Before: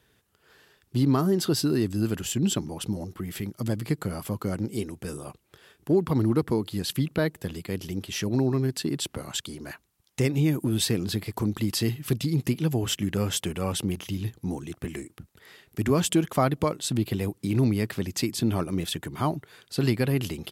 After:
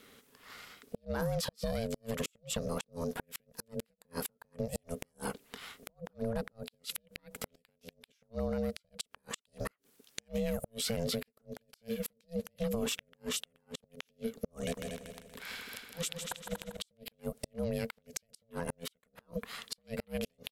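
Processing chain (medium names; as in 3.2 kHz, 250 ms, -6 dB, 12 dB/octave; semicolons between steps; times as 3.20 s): peaking EQ 430 Hz -13.5 dB 1 oct; peak limiter -24.5 dBFS, peak gain reduction 10.5 dB; compression 16:1, threshold -38 dBFS, peak gain reduction 11.5 dB; inverted gate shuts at -32 dBFS, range -41 dB; ring modulator 340 Hz; 14.61–16.77 s: multi-head delay 79 ms, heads second and third, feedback 43%, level -6.5 dB; trim +11 dB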